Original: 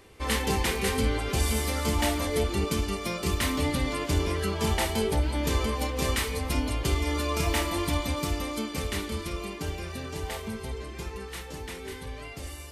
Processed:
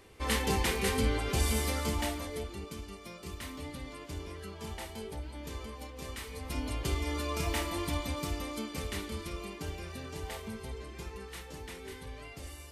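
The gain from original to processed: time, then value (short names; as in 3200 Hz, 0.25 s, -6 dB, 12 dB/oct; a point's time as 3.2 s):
1.7 s -3 dB
2.63 s -15 dB
6.13 s -15 dB
6.72 s -6 dB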